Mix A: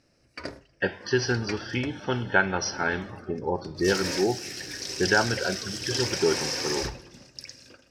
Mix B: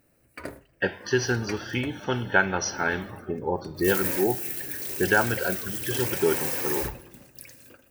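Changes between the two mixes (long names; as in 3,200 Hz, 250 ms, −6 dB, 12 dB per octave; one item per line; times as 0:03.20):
speech: remove high-frequency loss of the air 220 metres
master: remove low-pass with resonance 5,300 Hz, resonance Q 5.8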